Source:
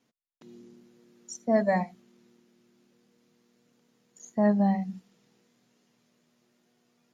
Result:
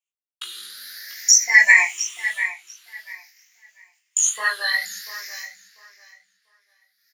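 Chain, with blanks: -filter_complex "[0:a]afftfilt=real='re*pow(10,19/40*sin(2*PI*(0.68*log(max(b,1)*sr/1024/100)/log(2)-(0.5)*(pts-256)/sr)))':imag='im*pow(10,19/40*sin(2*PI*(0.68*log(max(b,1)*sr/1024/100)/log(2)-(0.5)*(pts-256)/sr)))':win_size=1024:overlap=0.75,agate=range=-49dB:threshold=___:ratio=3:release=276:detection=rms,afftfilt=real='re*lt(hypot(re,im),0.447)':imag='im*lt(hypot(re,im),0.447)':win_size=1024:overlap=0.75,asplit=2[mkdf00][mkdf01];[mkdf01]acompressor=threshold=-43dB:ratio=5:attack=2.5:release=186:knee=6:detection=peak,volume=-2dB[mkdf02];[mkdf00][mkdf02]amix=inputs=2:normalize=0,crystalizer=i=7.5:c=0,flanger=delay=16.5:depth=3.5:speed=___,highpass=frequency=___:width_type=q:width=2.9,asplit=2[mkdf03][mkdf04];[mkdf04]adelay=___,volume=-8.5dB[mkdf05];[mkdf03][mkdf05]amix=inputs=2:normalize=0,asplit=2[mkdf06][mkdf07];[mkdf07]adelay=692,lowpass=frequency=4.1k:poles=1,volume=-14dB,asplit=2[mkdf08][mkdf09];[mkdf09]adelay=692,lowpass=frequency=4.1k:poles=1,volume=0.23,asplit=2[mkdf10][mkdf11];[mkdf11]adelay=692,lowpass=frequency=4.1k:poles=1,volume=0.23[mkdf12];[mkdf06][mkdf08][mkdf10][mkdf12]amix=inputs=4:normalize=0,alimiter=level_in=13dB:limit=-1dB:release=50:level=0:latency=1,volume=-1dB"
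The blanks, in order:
-54dB, 2.2, 1.9k, 20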